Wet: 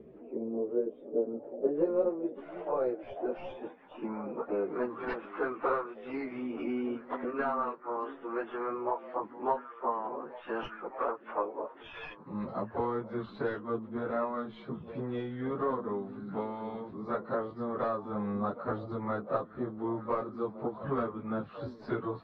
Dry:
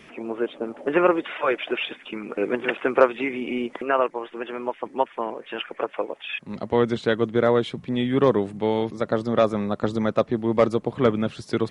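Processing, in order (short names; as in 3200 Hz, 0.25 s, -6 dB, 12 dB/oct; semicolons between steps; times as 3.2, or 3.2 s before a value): tracing distortion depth 0.082 ms; bell 4200 Hz +13 dB 0.56 oct; compressor 6:1, threshold -25 dBFS, peak gain reduction 14.5 dB; on a send: delay with a stepping band-pass 0.383 s, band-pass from 230 Hz, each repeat 1.4 oct, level -9.5 dB; on the sum: low-pass sweep 450 Hz -> 1200 Hz, 0.6–2.81; plain phase-vocoder stretch 1.9×; gain -3 dB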